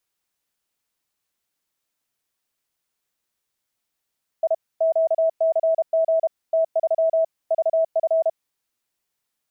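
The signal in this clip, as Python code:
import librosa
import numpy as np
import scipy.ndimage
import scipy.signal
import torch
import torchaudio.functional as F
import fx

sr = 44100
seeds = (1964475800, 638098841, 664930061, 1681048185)

y = fx.morse(sr, text='I QCG T3 VF', wpm=32, hz=650.0, level_db=-15.5)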